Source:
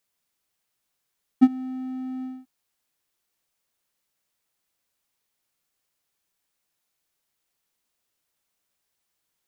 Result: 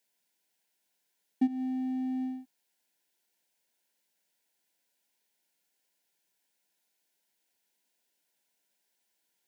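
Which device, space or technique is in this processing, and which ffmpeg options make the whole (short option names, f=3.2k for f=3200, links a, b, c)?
PA system with an anti-feedback notch: -af "highpass=f=170:w=0.5412,highpass=f=170:w=1.3066,asuperstop=centerf=1200:order=12:qfactor=3.9,alimiter=limit=-18dB:level=0:latency=1:release=187"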